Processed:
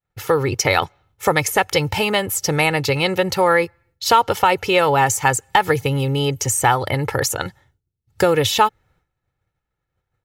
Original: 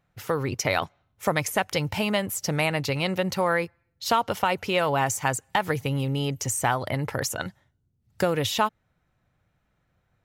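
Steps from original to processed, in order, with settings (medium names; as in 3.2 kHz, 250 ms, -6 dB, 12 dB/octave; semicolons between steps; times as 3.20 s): expander -60 dBFS; comb 2.3 ms, depth 51%; trim +7 dB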